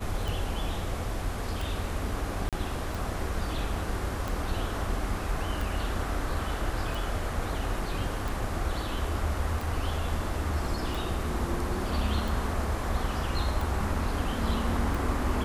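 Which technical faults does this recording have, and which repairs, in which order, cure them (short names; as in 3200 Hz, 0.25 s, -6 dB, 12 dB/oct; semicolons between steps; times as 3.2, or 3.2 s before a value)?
tick 45 rpm
2.49–2.53 gap 37 ms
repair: de-click; interpolate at 2.49, 37 ms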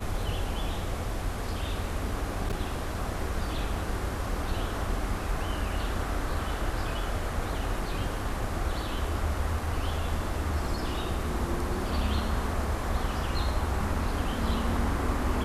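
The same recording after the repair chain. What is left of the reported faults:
none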